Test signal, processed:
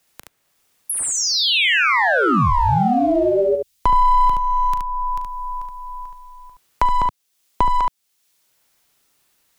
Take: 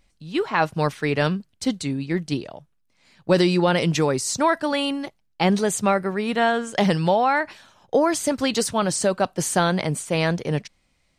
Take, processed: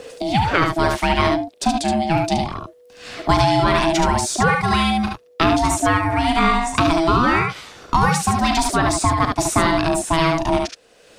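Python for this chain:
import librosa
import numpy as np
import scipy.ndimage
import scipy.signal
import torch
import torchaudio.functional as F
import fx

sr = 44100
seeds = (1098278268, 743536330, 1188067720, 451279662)

p1 = np.clip(x, -10.0 ** (-23.5 / 20.0), 10.0 ** (-23.5 / 20.0))
p2 = x + (p1 * 10.0 ** (-11.5 / 20.0))
p3 = p2 * np.sin(2.0 * np.pi * 490.0 * np.arange(len(p2)) / sr)
p4 = fx.room_early_taps(p3, sr, ms=(39, 72), db=(-12.0, -4.5))
p5 = fx.band_squash(p4, sr, depth_pct=70)
y = p5 * 10.0 ** (4.0 / 20.0)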